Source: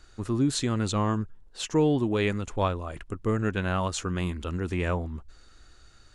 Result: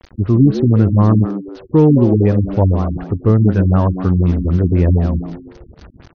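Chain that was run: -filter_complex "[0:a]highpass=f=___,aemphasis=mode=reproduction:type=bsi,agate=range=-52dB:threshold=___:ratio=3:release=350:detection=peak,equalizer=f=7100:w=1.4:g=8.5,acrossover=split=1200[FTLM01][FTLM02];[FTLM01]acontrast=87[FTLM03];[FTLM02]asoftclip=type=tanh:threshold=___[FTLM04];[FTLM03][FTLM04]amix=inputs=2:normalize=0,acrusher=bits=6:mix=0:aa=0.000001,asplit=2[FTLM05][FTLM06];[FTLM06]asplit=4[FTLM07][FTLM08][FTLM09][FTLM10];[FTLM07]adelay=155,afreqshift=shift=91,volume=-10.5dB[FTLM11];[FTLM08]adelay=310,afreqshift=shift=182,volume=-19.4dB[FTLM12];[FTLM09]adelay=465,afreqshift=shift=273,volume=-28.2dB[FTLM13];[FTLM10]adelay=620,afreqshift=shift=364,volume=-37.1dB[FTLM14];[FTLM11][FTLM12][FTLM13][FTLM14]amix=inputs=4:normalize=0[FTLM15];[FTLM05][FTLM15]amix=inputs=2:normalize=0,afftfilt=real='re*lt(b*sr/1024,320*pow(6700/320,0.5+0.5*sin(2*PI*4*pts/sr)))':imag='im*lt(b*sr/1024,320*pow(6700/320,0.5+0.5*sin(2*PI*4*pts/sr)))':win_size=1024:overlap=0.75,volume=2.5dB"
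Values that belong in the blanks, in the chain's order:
81, -53dB, -34dB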